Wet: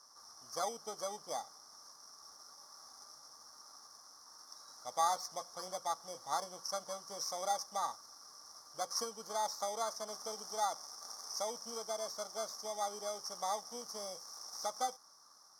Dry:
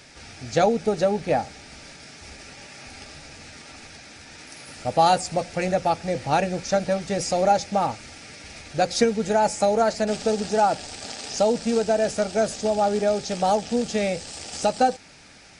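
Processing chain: FFT order left unsorted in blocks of 16 samples; double band-pass 2500 Hz, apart 2.3 oct

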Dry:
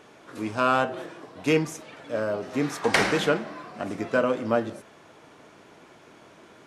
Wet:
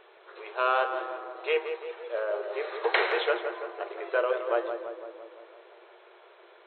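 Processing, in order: FFT band-pass 340–4200 Hz; tape echo 0.169 s, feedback 68%, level -6.5 dB, low-pass 1800 Hz; gain -3 dB

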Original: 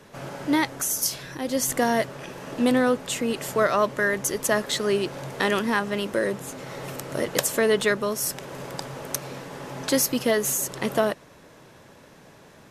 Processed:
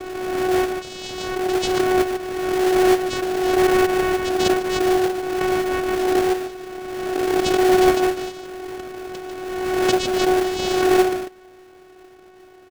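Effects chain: vocoder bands 4, saw 370 Hz; echo 0.146 s -7.5 dB; in parallel at -4 dB: sample-rate reducer 1100 Hz, jitter 20%; on the sum: backwards sustainer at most 29 dB/s

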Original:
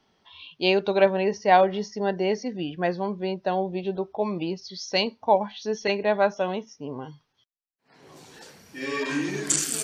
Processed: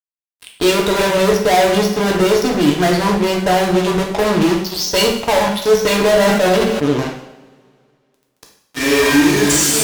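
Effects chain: fuzz box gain 38 dB, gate -37 dBFS; two-slope reverb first 0.68 s, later 2.4 s, from -21 dB, DRR 0 dB; 5.88–6.91 sustainer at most 30 dB/s; gain -1 dB

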